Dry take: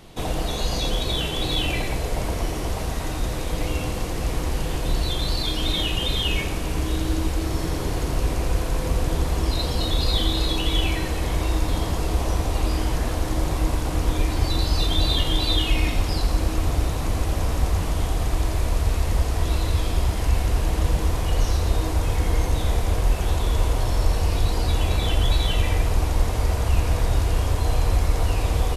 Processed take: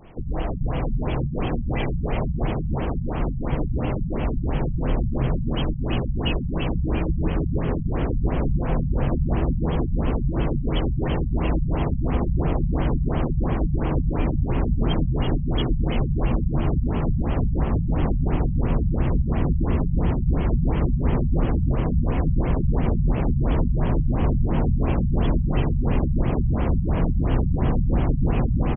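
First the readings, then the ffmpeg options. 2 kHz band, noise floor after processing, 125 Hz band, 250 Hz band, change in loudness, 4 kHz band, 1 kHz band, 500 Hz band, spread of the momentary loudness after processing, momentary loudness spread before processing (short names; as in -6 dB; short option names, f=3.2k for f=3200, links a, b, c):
-5.5 dB, -27 dBFS, +2.0 dB, +5.5 dB, 0.0 dB, -13.5 dB, -2.0 dB, +1.0 dB, 4 LU, 5 LU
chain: -filter_complex "[0:a]alimiter=limit=-12.5dB:level=0:latency=1:release=170,asplit=2[a][b];[b]asplit=8[c][d][e][f][g][h][i][j];[c]adelay=296,afreqshift=98,volume=-5.5dB[k];[d]adelay=592,afreqshift=196,volume=-9.9dB[l];[e]adelay=888,afreqshift=294,volume=-14.4dB[m];[f]adelay=1184,afreqshift=392,volume=-18.8dB[n];[g]adelay=1480,afreqshift=490,volume=-23.2dB[o];[h]adelay=1776,afreqshift=588,volume=-27.7dB[p];[i]adelay=2072,afreqshift=686,volume=-32.1dB[q];[j]adelay=2368,afreqshift=784,volume=-36.6dB[r];[k][l][m][n][o][p][q][r]amix=inputs=8:normalize=0[s];[a][s]amix=inputs=2:normalize=0,afftfilt=real='re*lt(b*sr/1024,200*pow(3400/200,0.5+0.5*sin(2*PI*2.9*pts/sr)))':imag='im*lt(b*sr/1024,200*pow(3400/200,0.5+0.5*sin(2*PI*2.9*pts/sr)))':win_size=1024:overlap=0.75"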